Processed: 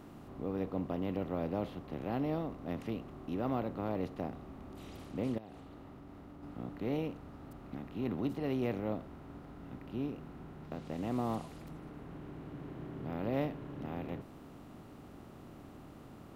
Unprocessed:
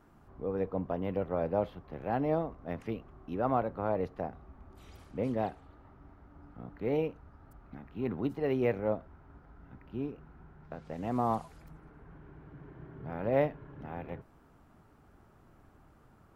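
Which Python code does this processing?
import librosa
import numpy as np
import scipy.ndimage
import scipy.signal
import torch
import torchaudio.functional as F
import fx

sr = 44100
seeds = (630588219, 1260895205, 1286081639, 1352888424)

y = fx.bin_compress(x, sr, power=0.6)
y = fx.band_shelf(y, sr, hz=1000.0, db=-10.0, octaves=2.8)
y = fx.level_steps(y, sr, step_db=24, at=(5.38, 6.43))
y = fx.low_shelf(y, sr, hz=300.0, db=-5.0)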